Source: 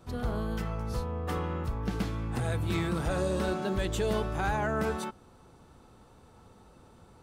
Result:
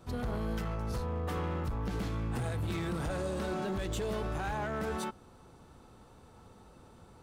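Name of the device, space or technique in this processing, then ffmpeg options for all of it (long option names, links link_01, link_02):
limiter into clipper: -af "alimiter=level_in=1dB:limit=-24dB:level=0:latency=1:release=55,volume=-1dB,asoftclip=type=hard:threshold=-30dB"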